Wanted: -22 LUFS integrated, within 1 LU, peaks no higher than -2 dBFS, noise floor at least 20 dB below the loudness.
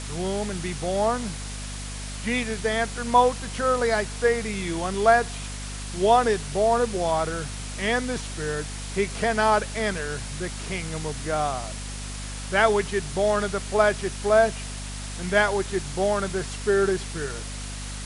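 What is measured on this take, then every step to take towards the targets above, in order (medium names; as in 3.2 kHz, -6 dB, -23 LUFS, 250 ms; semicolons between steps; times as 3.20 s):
hum 50 Hz; highest harmonic 250 Hz; hum level -33 dBFS; noise floor -34 dBFS; noise floor target -45 dBFS; loudness -25.0 LUFS; peak level -5.5 dBFS; loudness target -22.0 LUFS
-> hum notches 50/100/150/200/250 Hz; noise print and reduce 11 dB; trim +3 dB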